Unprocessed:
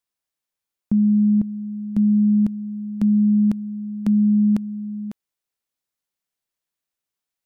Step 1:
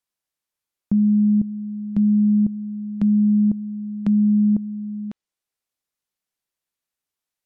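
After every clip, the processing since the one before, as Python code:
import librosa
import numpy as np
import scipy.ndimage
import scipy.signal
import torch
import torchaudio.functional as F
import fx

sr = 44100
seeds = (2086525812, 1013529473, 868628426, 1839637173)

y = fx.env_lowpass_down(x, sr, base_hz=490.0, full_db=-18.0)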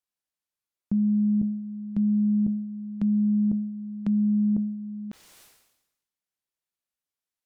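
y = fx.sustainer(x, sr, db_per_s=58.0)
y = y * librosa.db_to_amplitude(-6.0)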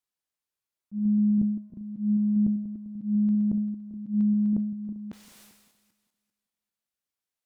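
y = fx.reverse_delay_fb(x, sr, ms=197, feedback_pct=47, wet_db=-14.0)
y = fx.auto_swell(y, sr, attack_ms=147.0)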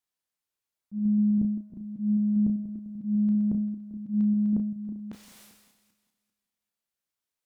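y = fx.doubler(x, sr, ms=32.0, db=-7.5)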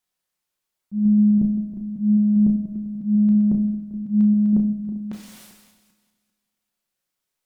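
y = fx.room_shoebox(x, sr, seeds[0], volume_m3=700.0, walls='furnished', distance_m=1.0)
y = y * librosa.db_to_amplitude(6.0)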